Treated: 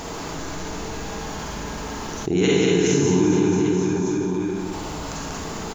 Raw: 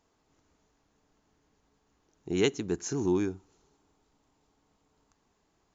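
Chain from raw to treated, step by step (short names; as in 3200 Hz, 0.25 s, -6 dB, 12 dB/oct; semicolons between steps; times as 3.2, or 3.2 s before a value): reverse bouncing-ball echo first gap 0.19 s, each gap 1.1×, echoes 5; Schroeder reverb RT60 0.85 s, DRR -6 dB; fast leveller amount 70%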